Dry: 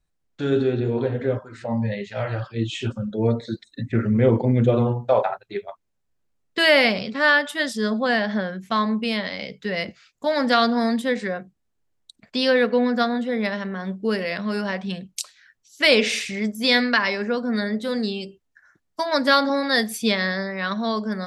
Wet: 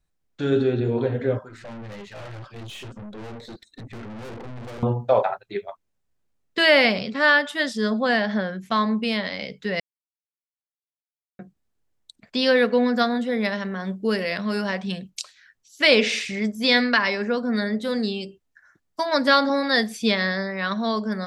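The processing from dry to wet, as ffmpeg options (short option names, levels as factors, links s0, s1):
-filter_complex "[0:a]asettb=1/sr,asplit=3[s0][s1][s2];[s0]atrim=end=1.494[s3];[s1]atrim=start=1.49:end=4.83,asetpts=PTS-STARTPTS,afade=t=in:d=0.004:c=qsin,afade=t=out:st=3.336:d=0.004:c=qsin,aeval=exprs='(tanh(63.1*val(0)+0.4)-tanh(0.4))/63.1':c=same[s4];[s2]atrim=start=4.826[s5];[s3][s4]acrossfade=d=0.004:c1=hsin:c2=qsin[s6];[s6][s5]acrossfade=d=0.004:c1=qsin:c2=hsin,asettb=1/sr,asplit=3[s7][s8][s9];[s7]atrim=end=12.464[s10];[s8]atrim=start=12.46:end=15.1,asetpts=PTS-STARTPTS,afade=t=in:d=0.004:c=qsin,afade=t=out:st=2.636:d=0.004:c=qsin,highshelf=f=6400:g=7[s11];[s9]atrim=start=15.096[s12];[s10][s11]acrossfade=d=0.004:c1=hsin:c2=qsin[s13];[s13][s12]acrossfade=d=0.004:c1=qsin:c2=hsin,asplit=3[s14][s15][s16];[s14]atrim=end=9.8,asetpts=PTS-STARTPTS,afade=t=out:st=9.796:d=0.004:c=hsin[s17];[s15]atrim=start=9.8:end=11.39,asetpts=PTS-STARTPTS,volume=0[s18];[s16]atrim=start=11.39,asetpts=PTS-STARTPTS,afade=t=in:d=0.004:c=hsin[s19];[s17][s18][s19]concat=n=3:v=0:a=1,acrossover=split=7100[s20][s21];[s21]acompressor=threshold=0.00398:ratio=4:attack=1:release=60[s22];[s20][s22]amix=inputs=2:normalize=0"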